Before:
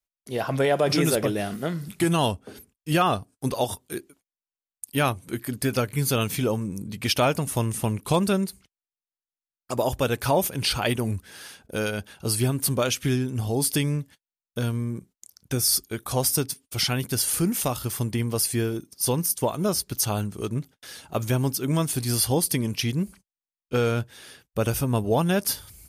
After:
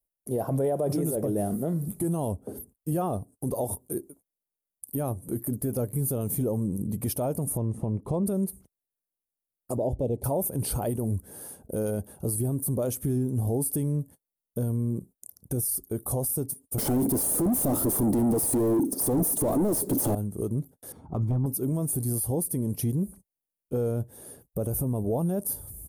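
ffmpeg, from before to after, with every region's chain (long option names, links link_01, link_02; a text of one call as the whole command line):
ffmpeg -i in.wav -filter_complex "[0:a]asettb=1/sr,asplit=3[link_01][link_02][link_03];[link_01]atrim=end=7.574[link_04];[link_02]atrim=start=7.57:end=8.26,asetpts=PTS-STARTPTS,afade=type=in:duration=0.004:curve=qsin,afade=type=out:start_time=0.686:duration=0.004:curve=qsin,highshelf=frequency=8800:gain=-4.5,bandreject=frequency=1500:width=11,adynamicsmooth=sensitivity=1:basefreq=3400[link_05];[link_03]atrim=start=8.256[link_06];[link_04][link_05]acrossfade=duration=0.004:curve1=hsin:curve2=qsin[link_07];[link_07][link_06]acrossfade=duration=0.004:curve1=qsin:curve2=hsin,asettb=1/sr,asplit=3[link_08][link_09][link_10];[link_08]atrim=end=9.774[link_11];[link_09]atrim=start=9.77:end=10.24,asetpts=PTS-STARTPTS,afade=type=in:duration=0.004:curve=qsin,afade=type=out:start_time=0.466:duration=0.004:curve=qsin,adynamicsmooth=sensitivity=0.5:basefreq=3400,asuperstop=centerf=1400:order=4:qfactor=0.78[link_12];[link_10]atrim=start=10.236[link_13];[link_11][link_12]acrossfade=duration=0.004:curve1=hsin:curve2=qsin[link_14];[link_14][link_13]acrossfade=duration=0.004:curve1=qsin:curve2=hsin,asettb=1/sr,asplit=3[link_15][link_16][link_17];[link_15]atrim=end=16.784[link_18];[link_16]atrim=start=16.78:end=20.15,asetpts=PTS-STARTPTS,afade=type=in:duration=0.004:curve=qsin,afade=type=out:start_time=3.366:duration=0.004:curve=qsin,equalizer=frequency=280:width_type=o:width=1.1:gain=14.5,asplit=2[link_19][link_20];[link_20]highpass=frequency=720:poles=1,volume=38dB,asoftclip=type=tanh:threshold=-4.5dB[link_21];[link_19][link_21]amix=inputs=2:normalize=0,lowpass=frequency=4300:poles=1,volume=-6dB,acrusher=bits=7:mix=0:aa=0.5[link_22];[link_17]atrim=start=20.146[link_23];[link_18][link_22]acrossfade=duration=0.004:curve1=hsin:curve2=qsin[link_24];[link_24][link_23]acrossfade=duration=0.004:curve1=qsin:curve2=hsin,asettb=1/sr,asplit=3[link_25][link_26][link_27];[link_25]atrim=end=20.924[link_28];[link_26]atrim=start=20.92:end=21.46,asetpts=PTS-STARTPTS,afade=type=in:duration=0.004:curve=qsin,afade=type=out:start_time=0.536:duration=0.004:curve=qsin,aecho=1:1:0.9:0.59,atrim=end_sample=23814,aeval=exprs='0.188*(abs(mod(val(0)/0.188+3,4)-2)-1)':channel_layout=same,adynamicsmooth=sensitivity=1.5:basefreq=1800[link_29];[link_27]atrim=start=21.456[link_30];[link_28][link_29]acrossfade=duration=0.004:curve1=hsin:curve2=qsin[link_31];[link_31][link_30]acrossfade=duration=0.004:curve1=qsin:curve2=hsin,firequalizer=gain_entry='entry(570,0);entry(1400,-18);entry(2600,-26);entry(5300,-19);entry(9800,2)':delay=0.05:min_phase=1,acompressor=threshold=-31dB:ratio=2,alimiter=level_in=1dB:limit=-24dB:level=0:latency=1:release=20,volume=-1dB,volume=5.5dB" out.wav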